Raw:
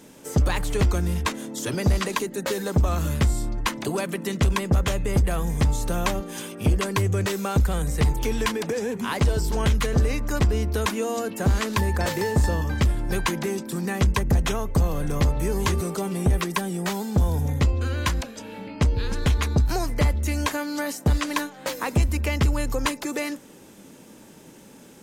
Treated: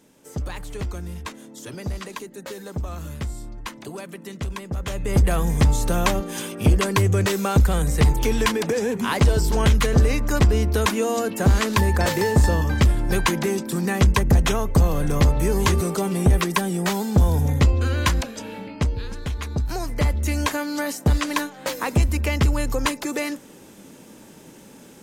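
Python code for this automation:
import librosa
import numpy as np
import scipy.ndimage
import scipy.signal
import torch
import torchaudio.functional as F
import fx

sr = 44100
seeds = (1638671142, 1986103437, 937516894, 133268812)

y = fx.gain(x, sr, db=fx.line((4.74, -8.5), (5.22, 4.0), (18.47, 4.0), (19.25, -7.5), (20.26, 2.0)))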